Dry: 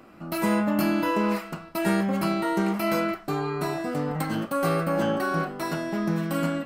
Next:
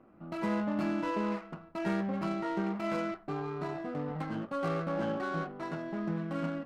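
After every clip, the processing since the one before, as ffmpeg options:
-af "adynamicsmooth=sensitivity=3:basefreq=1.3k,volume=-8dB"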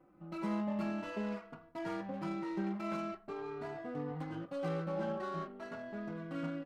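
-filter_complex "[0:a]asplit=2[a][b];[b]adelay=3.5,afreqshift=0.44[c];[a][c]amix=inputs=2:normalize=1,volume=-2.5dB"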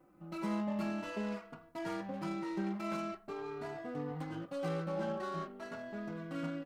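-af "highshelf=f=5k:g=8.5"

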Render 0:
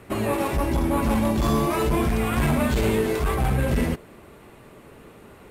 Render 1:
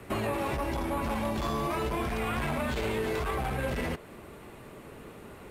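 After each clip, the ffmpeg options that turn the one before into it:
-filter_complex "[0:a]alimiter=limit=-18dB:level=0:latency=1:release=18,acrossover=split=190|440|5200[a][b][c][d];[a]acompressor=threshold=-35dB:ratio=4[e];[b]acompressor=threshold=-41dB:ratio=4[f];[c]acompressor=threshold=-30dB:ratio=4[g];[d]acompressor=threshold=-52dB:ratio=4[h];[e][f][g][h]amix=inputs=4:normalize=0"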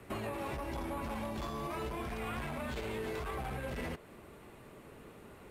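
-af "alimiter=limit=-22.5dB:level=0:latency=1:release=206,volume=-6.5dB"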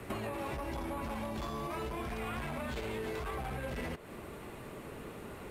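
-af "acompressor=threshold=-46dB:ratio=2.5,volume=7.5dB"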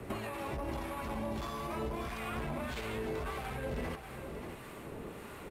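-filter_complex "[0:a]acrossover=split=900[a][b];[a]aeval=exprs='val(0)*(1-0.5/2+0.5/2*cos(2*PI*1.6*n/s))':c=same[c];[b]aeval=exprs='val(0)*(1-0.5/2-0.5/2*cos(2*PI*1.6*n/s))':c=same[d];[c][d]amix=inputs=2:normalize=0,aecho=1:1:586:0.376,volume=2dB"

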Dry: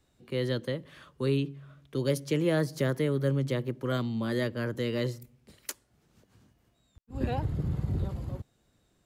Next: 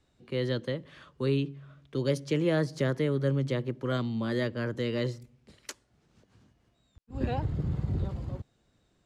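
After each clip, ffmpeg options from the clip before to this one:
-af "lowpass=6.9k"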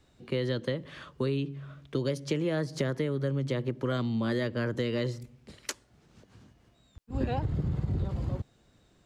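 -af "acompressor=threshold=-32dB:ratio=6,volume=6dB"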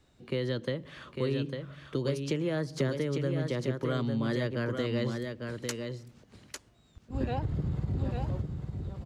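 -af "aecho=1:1:851:0.531,volume=-1.5dB"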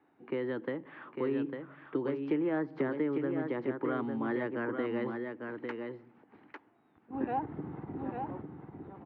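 -af "highpass=290,equalizer=f=300:t=q:w=4:g=8,equalizer=f=570:t=q:w=4:g=-7,equalizer=f=840:t=q:w=4:g=8,lowpass=f=2.1k:w=0.5412,lowpass=f=2.1k:w=1.3066"

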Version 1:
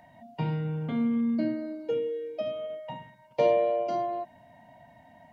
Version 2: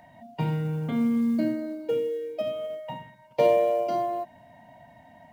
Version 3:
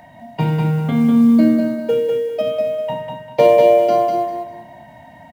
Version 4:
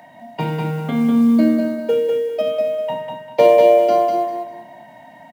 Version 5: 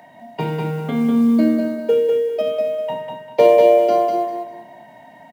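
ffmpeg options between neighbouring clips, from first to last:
-af "acrusher=bits=9:mode=log:mix=0:aa=0.000001,volume=2.5dB"
-af "aecho=1:1:198|396|594|792:0.631|0.17|0.046|0.0124,volume=9dB"
-af "highpass=210"
-af "equalizer=f=410:w=5.4:g=8.5,volume=-1.5dB"

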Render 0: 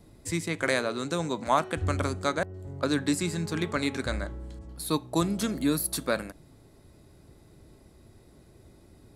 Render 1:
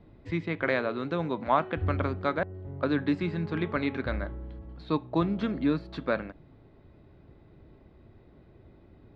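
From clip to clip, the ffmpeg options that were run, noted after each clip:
-af "lowpass=f=3.5k:w=0.5412,lowpass=f=3.5k:w=1.3066,aemphasis=mode=reproduction:type=50kf"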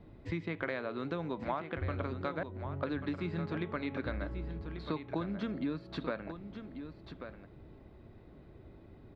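-af "acompressor=threshold=-33dB:ratio=5,aecho=1:1:1139:0.335"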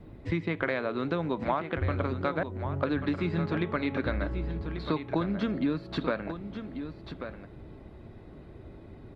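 -af "volume=7dB" -ar 48000 -c:a libopus -b:a 32k

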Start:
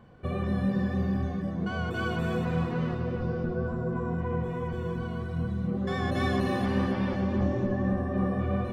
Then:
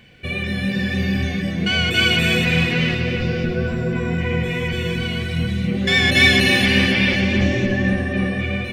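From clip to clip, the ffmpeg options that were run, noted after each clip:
-af "highshelf=f=1.6k:t=q:w=3:g=13,dynaudnorm=f=280:g=7:m=6dB,volume=3dB"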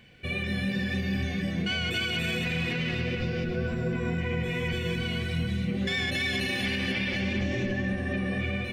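-af "alimiter=limit=-14dB:level=0:latency=1:release=114,volume=-6dB"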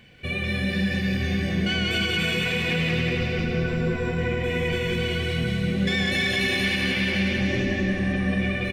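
-af "aecho=1:1:184|368|552|736|920|1104|1288|1472:0.631|0.372|0.22|0.13|0.0765|0.0451|0.0266|0.0157,volume=3dB"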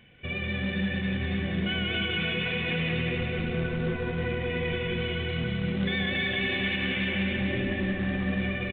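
-af "acrusher=bits=3:mode=log:mix=0:aa=0.000001,aresample=8000,aresample=44100,volume=-4.5dB"

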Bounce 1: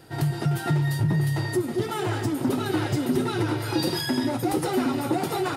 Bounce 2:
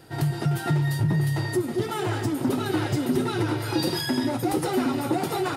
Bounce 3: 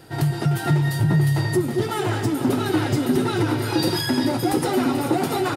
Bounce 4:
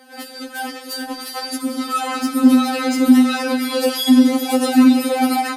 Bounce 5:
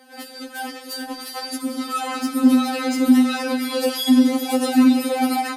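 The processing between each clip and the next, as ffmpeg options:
-af anull
-af "aecho=1:1:436:0.282,volume=3.5dB"
-af "dynaudnorm=f=500:g=3:m=6dB,highpass=220,afftfilt=real='re*3.46*eq(mod(b,12),0)':imag='im*3.46*eq(mod(b,12),0)':win_size=2048:overlap=0.75,volume=2.5dB"
-af "bandreject=f=1.4k:w=11,volume=-3dB"

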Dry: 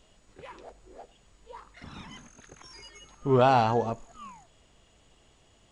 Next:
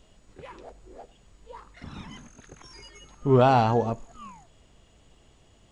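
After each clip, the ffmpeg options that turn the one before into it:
-af "lowshelf=f=420:g=5.5"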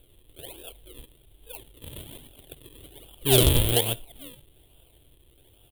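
-af "acrusher=samples=41:mix=1:aa=0.000001:lfo=1:lforange=41:lforate=1.2,firequalizer=gain_entry='entry(130,0);entry(190,-13);entry(320,1);entry(1200,-11);entry(2100,-4);entry(3300,14);entry(5300,-18);entry(9400,15)':delay=0.05:min_phase=1,aeval=exprs='0.501*(abs(mod(val(0)/0.501+3,4)-2)-1)':c=same"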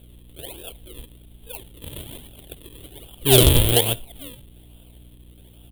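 -af "aeval=exprs='val(0)+0.00251*(sin(2*PI*60*n/s)+sin(2*PI*2*60*n/s)/2+sin(2*PI*3*60*n/s)/3+sin(2*PI*4*60*n/s)/4+sin(2*PI*5*60*n/s)/5)':c=same,volume=5dB"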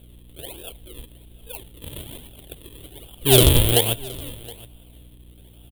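-af "aecho=1:1:719:0.0841"

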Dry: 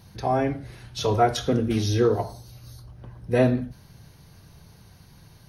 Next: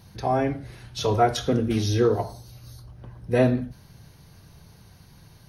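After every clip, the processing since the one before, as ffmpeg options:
-af anull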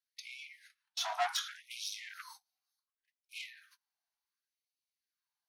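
-af "agate=range=-33dB:threshold=-37dB:ratio=16:detection=peak,asoftclip=type=tanh:threshold=-24dB,afftfilt=real='re*gte(b*sr/1024,620*pow(2200/620,0.5+0.5*sin(2*PI*0.68*pts/sr)))':imag='im*gte(b*sr/1024,620*pow(2200/620,0.5+0.5*sin(2*PI*0.68*pts/sr)))':win_size=1024:overlap=0.75,volume=-2dB"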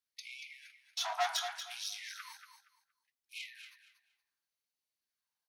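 -af "aecho=1:1:234|468|702:0.355|0.0816|0.0188"

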